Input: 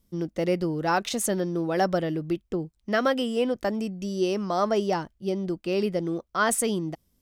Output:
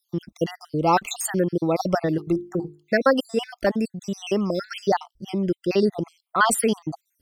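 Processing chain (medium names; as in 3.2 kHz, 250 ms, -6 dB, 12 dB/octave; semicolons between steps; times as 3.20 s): random holes in the spectrogram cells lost 58%; 2.06–2.93 s: hum notches 50/100/150/200/250/300/350/400/450 Hz; trim +6.5 dB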